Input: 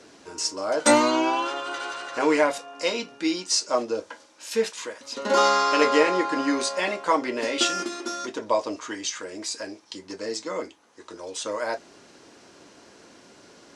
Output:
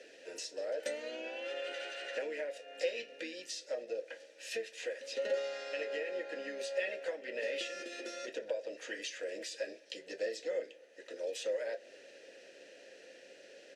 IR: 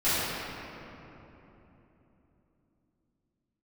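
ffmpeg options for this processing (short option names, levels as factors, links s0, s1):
-filter_complex "[0:a]acompressor=threshold=0.0251:ratio=12,crystalizer=i=4:c=0,asplit=3[s0][s1][s2];[s1]asetrate=33038,aresample=44100,atempo=1.33484,volume=0.251[s3];[s2]asetrate=66075,aresample=44100,atempo=0.66742,volume=0.2[s4];[s0][s3][s4]amix=inputs=3:normalize=0,asplit=3[s5][s6][s7];[s5]bandpass=f=530:t=q:w=8,volume=1[s8];[s6]bandpass=f=1840:t=q:w=8,volume=0.501[s9];[s7]bandpass=f=2480:t=q:w=8,volume=0.355[s10];[s8][s9][s10]amix=inputs=3:normalize=0,asplit=2[s11][s12];[1:a]atrim=start_sample=2205[s13];[s12][s13]afir=irnorm=-1:irlink=0,volume=0.0158[s14];[s11][s14]amix=inputs=2:normalize=0,volume=1.68"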